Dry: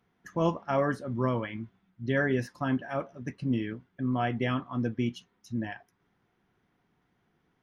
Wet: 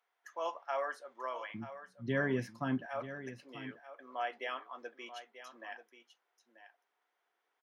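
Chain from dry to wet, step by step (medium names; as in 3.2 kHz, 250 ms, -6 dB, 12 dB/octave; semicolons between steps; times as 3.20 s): high-pass 590 Hz 24 dB/octave, from 1.54 s 110 Hz, from 2.86 s 510 Hz; delay 937 ms -12.5 dB; trim -5.5 dB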